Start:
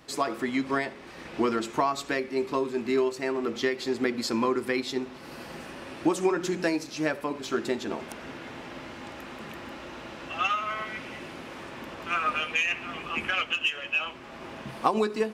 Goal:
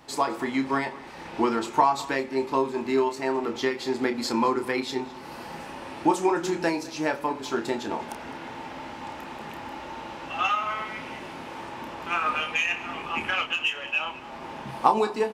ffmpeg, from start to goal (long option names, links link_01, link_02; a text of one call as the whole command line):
ffmpeg -i in.wav -filter_complex "[0:a]equalizer=frequency=880:width_type=o:width=0.28:gain=12,asplit=2[link_01][link_02];[link_02]adelay=30,volume=-8dB[link_03];[link_01][link_03]amix=inputs=2:normalize=0,aecho=1:1:209:0.1" out.wav